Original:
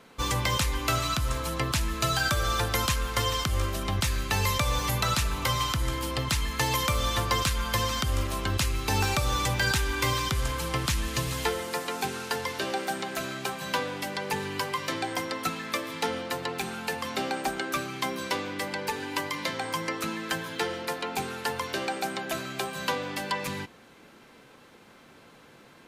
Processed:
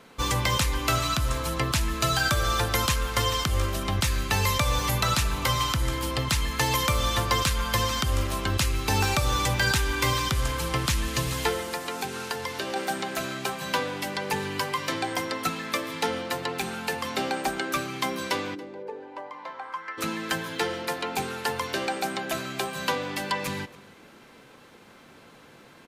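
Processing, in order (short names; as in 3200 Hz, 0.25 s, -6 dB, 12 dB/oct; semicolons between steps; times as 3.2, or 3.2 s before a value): 11.6–12.76 compressor 4:1, threshold -30 dBFS, peak gain reduction 5.5 dB; 18.54–19.97 band-pass 310 Hz -> 1600 Hz, Q 2.8; outdoor echo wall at 48 m, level -20 dB; gain +2 dB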